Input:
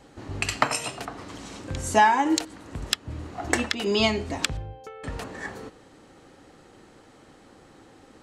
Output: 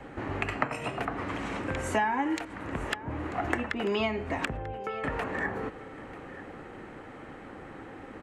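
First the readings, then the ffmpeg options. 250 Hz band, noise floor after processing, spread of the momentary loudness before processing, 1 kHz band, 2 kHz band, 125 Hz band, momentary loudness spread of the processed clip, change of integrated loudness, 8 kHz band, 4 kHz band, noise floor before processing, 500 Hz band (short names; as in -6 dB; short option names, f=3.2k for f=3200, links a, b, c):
-3.5 dB, -46 dBFS, 19 LU, -6.5 dB, -3.5 dB, -2.5 dB, 16 LU, -6.0 dB, -15.0 dB, -11.5 dB, -53 dBFS, -3.0 dB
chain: -filter_complex "[0:a]highshelf=f=3.2k:t=q:w=1.5:g=-13,acrossover=split=270|560|1400[a][b][c][d];[a]acompressor=threshold=-45dB:ratio=4[e];[b]acompressor=threshold=-45dB:ratio=4[f];[c]acompressor=threshold=-42dB:ratio=4[g];[d]acompressor=threshold=-44dB:ratio=4[h];[e][f][g][h]amix=inputs=4:normalize=0,aecho=1:1:941:0.141,volume=7dB"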